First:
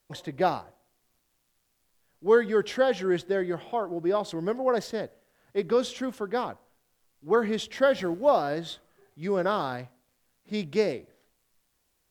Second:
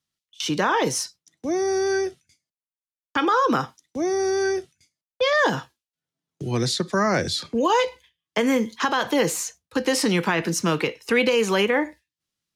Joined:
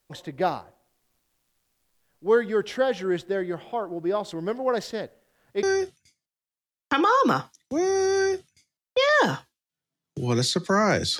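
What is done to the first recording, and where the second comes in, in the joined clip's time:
first
0:04.31–0:05.63: dynamic equaliser 3,300 Hz, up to +4 dB, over −46 dBFS, Q 0.72
0:05.63: continue with second from 0:01.87

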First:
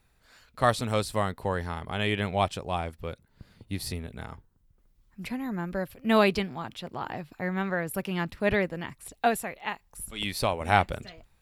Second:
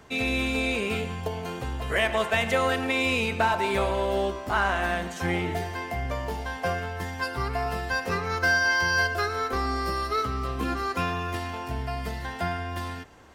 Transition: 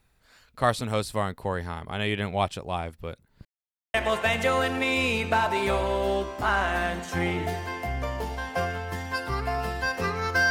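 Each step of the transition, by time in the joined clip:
first
0:03.45–0:03.94: silence
0:03.94: continue with second from 0:02.02

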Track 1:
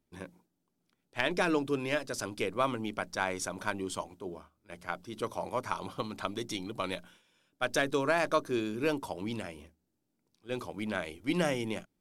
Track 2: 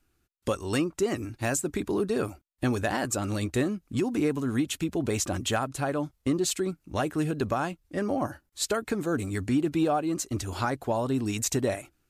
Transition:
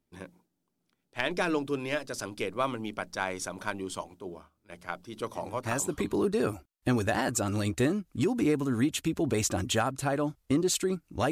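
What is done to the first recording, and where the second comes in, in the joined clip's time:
track 1
0:05.77: continue with track 2 from 0:01.53, crossfade 0.92 s equal-power

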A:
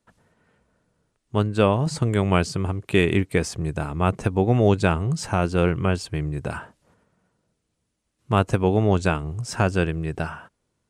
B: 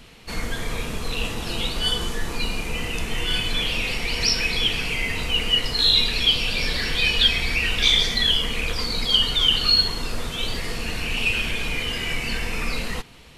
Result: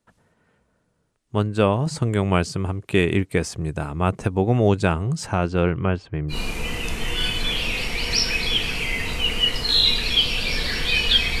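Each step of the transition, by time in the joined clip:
A
0:05.26–0:06.38: low-pass filter 7,400 Hz → 1,500 Hz
0:06.33: continue with B from 0:02.43, crossfade 0.10 s

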